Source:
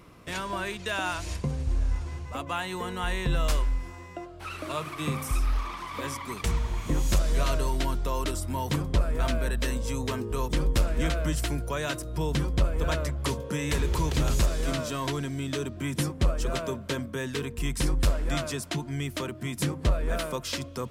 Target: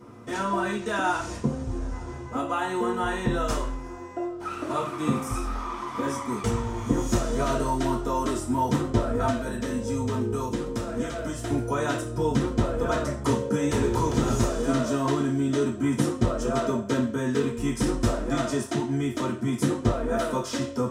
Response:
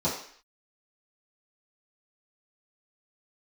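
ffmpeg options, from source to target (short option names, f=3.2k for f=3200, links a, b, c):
-filter_complex "[0:a]asettb=1/sr,asplit=3[a][b][c];[a]atrim=end=9.294[d];[b]atrim=start=9.29:end=11.5,asetpts=PTS-STARTPTS,afade=t=in:d=0.004:c=qsin,afade=t=out:st=2.206:d=0.004:c=qsin,acrossover=split=87|2400[e][f][g];[e]acompressor=threshold=-35dB:ratio=4[h];[f]acompressor=threshold=-34dB:ratio=4[i];[g]acompressor=threshold=-39dB:ratio=4[j];[h][i][j]amix=inputs=3:normalize=0[k];[c]atrim=start=11.496[l];[d][k]acrossfade=d=0.004:c1=hsin:c2=qsin[m];[m][l]acrossfade=d=0.004:c1=qsin:c2=hsin[n];[1:a]atrim=start_sample=2205,asetrate=61740,aresample=44100[o];[n][o]afir=irnorm=-1:irlink=0,volume=-6dB"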